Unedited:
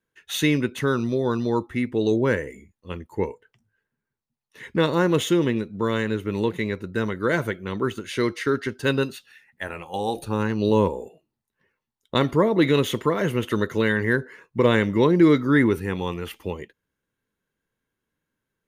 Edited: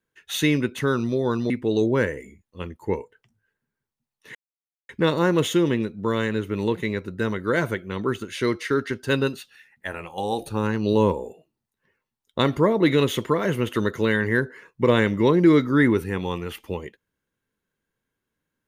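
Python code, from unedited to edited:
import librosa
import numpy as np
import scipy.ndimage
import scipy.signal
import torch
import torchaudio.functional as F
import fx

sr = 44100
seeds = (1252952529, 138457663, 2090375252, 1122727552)

y = fx.edit(x, sr, fx.cut(start_s=1.5, length_s=0.3),
    fx.insert_silence(at_s=4.65, length_s=0.54), tone=tone)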